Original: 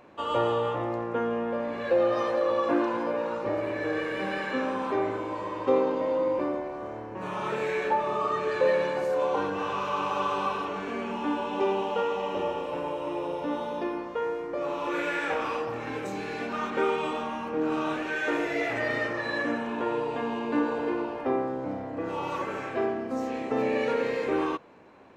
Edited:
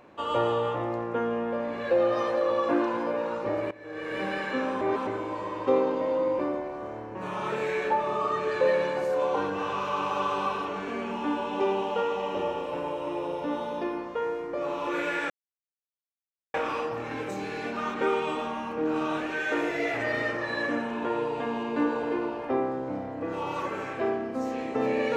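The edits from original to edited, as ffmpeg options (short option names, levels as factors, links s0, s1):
-filter_complex "[0:a]asplit=5[s0][s1][s2][s3][s4];[s0]atrim=end=3.71,asetpts=PTS-STARTPTS,afade=t=out:st=3.706:d=0.004:c=hsin:silence=0.141254[s5];[s1]atrim=start=3.71:end=4.812,asetpts=PTS-STARTPTS,afade=t=in:d=0.45:c=qua:silence=0.141254[s6];[s2]atrim=start=4.808:end=5.072,asetpts=PTS-STARTPTS,areverse[s7];[s3]atrim=start=5.068:end=15.3,asetpts=PTS-STARTPTS,afade=t=out:st=10.228:d=0.004:c=hsin,apad=pad_dur=1.24[s8];[s4]atrim=start=15.3,asetpts=PTS-STARTPTS,afade=t=in:d=0.004:c=hsin[s9];[s5][s6]concat=n=2:v=0:a=1[s10];[s10][s7]acrossfade=d=0.004:c1=hsin:c2=hsin[s11];[s8][s9]concat=n=2:v=0:a=1[s12];[s11][s12]acrossfade=d=0.004:c1=hsin:c2=hsin"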